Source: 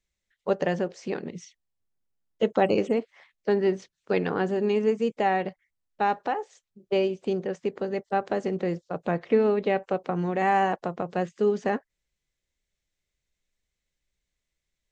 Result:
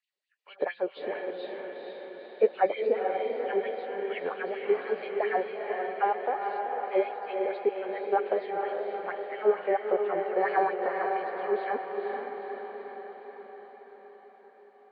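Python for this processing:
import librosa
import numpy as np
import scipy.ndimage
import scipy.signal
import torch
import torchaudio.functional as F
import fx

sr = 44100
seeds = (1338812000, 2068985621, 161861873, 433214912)

y = fx.freq_compress(x, sr, knee_hz=1600.0, ratio=1.5)
y = fx.filter_lfo_highpass(y, sr, shape='sine', hz=4.4, low_hz=400.0, high_hz=3000.0, q=3.3)
y = fx.echo_diffused(y, sr, ms=472, feedback_pct=61, wet_db=-3.5)
y = F.gain(torch.from_numpy(y), -7.0).numpy()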